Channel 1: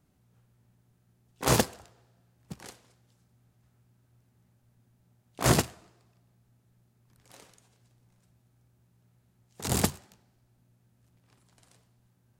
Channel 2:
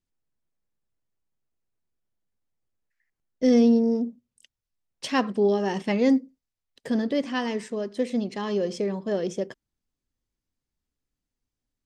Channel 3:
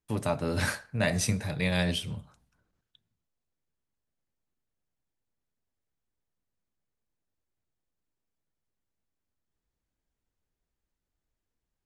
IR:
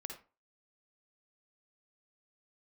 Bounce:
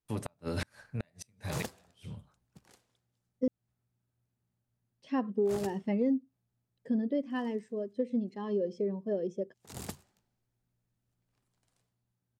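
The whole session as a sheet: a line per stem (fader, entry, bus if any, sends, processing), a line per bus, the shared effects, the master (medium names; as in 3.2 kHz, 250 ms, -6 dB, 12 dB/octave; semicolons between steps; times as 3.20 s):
-15.5 dB, 0.05 s, no send, none
+0.5 dB, 0.00 s, muted 3.48–4.69 s, no send, de-esser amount 95%; spectral contrast expander 1.5:1
-4.0 dB, 0.00 s, no send, inverted gate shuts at -18 dBFS, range -39 dB; auto duck -20 dB, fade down 1.50 s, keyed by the second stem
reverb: none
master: compression 6:1, threshold -26 dBFS, peak gain reduction 11 dB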